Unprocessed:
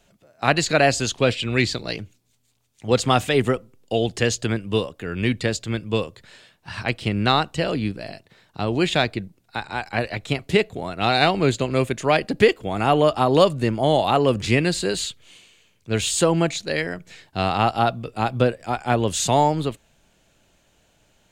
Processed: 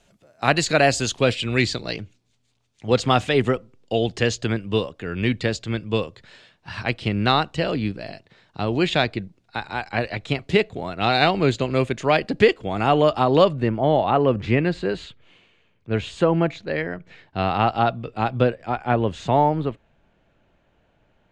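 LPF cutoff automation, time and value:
1.56 s 11000 Hz
2.02 s 5500 Hz
13.19 s 5500 Hz
13.76 s 2100 Hz
16.82 s 2100 Hz
17.78 s 3600 Hz
18.46 s 3600 Hz
19.14 s 2000 Hz

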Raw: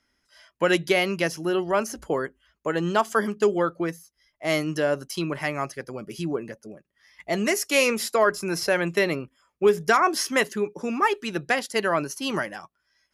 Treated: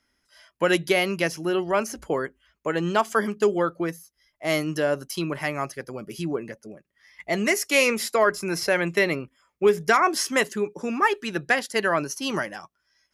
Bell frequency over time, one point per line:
bell +4.5 dB 0.32 oct
11000 Hz
from 1.23 s 2300 Hz
from 3.35 s 12000 Hz
from 6.22 s 2100 Hz
from 10.16 s 7800 Hz
from 10.84 s 1700 Hz
from 11.98 s 5800 Hz

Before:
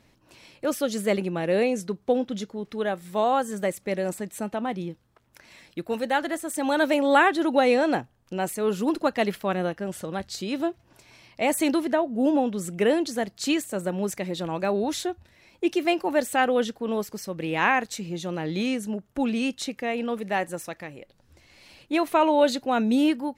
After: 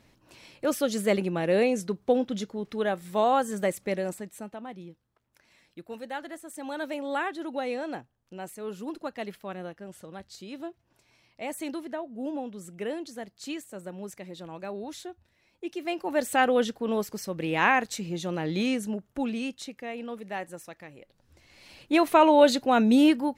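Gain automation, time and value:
3.85 s -0.5 dB
4.61 s -11.5 dB
15.71 s -11.5 dB
16.33 s -0.5 dB
18.81 s -0.5 dB
19.7 s -8.5 dB
20.76 s -8.5 dB
21.94 s +2 dB

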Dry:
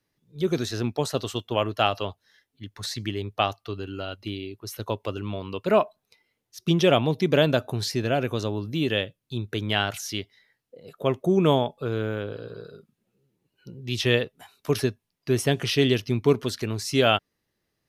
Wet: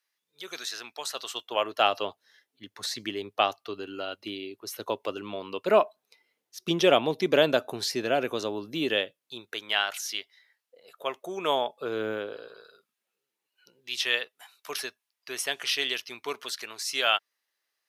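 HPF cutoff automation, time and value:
1.08 s 1200 Hz
1.96 s 320 Hz
8.92 s 320 Hz
9.63 s 820 Hz
11.38 s 820 Hz
12.11 s 270 Hz
12.65 s 1000 Hz

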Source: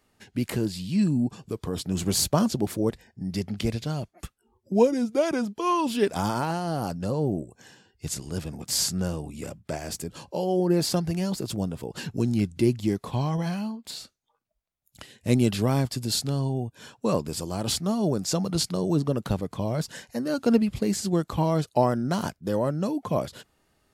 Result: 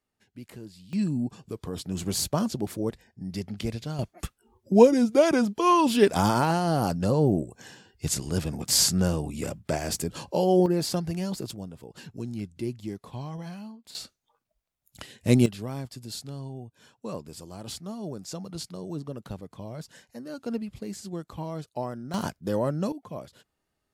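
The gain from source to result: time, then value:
-16 dB
from 0.93 s -4 dB
from 3.99 s +4 dB
from 10.66 s -3 dB
from 11.51 s -10 dB
from 13.95 s +2 dB
from 15.46 s -11 dB
from 22.14 s -1 dB
from 22.92 s -12 dB

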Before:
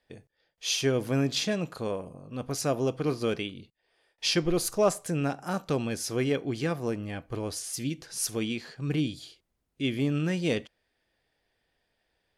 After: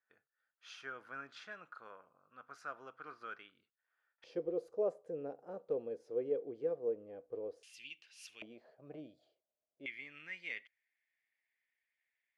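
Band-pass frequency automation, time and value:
band-pass, Q 7.6
1400 Hz
from 4.24 s 480 Hz
from 7.63 s 2700 Hz
from 8.42 s 620 Hz
from 9.86 s 2100 Hz

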